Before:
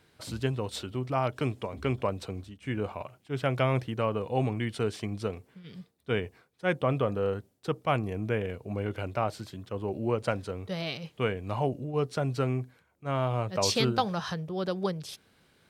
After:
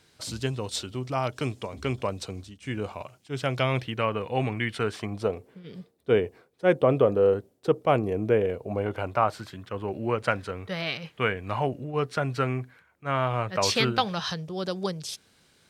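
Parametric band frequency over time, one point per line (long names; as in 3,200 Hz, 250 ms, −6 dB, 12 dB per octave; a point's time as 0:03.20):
parametric band +9.5 dB 1.6 octaves
0:03.44 6,200 Hz
0:04.06 2,000 Hz
0:04.72 2,000 Hz
0:05.46 440 Hz
0:08.40 440 Hz
0:09.58 1,700 Hz
0:13.80 1,700 Hz
0:14.54 6,700 Hz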